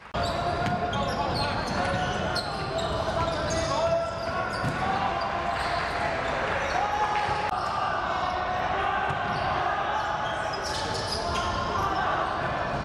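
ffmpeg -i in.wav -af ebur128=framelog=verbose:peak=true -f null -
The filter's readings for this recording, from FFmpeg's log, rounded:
Integrated loudness:
  I:         -27.4 LUFS
  Threshold: -37.4 LUFS
Loudness range:
  LRA:         0.7 LU
  Threshold: -47.4 LUFS
  LRA low:   -27.7 LUFS
  LRA high:  -27.0 LUFS
True peak:
  Peak:      -12.5 dBFS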